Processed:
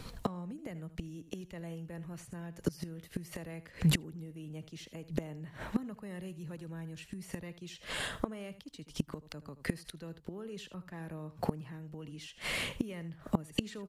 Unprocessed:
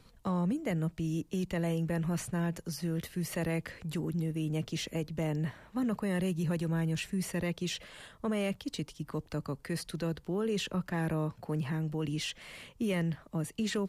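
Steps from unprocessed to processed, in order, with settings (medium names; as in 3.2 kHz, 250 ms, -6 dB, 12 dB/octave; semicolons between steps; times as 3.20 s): delay 78 ms -14.5 dB; inverted gate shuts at -30 dBFS, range -25 dB; trim +13 dB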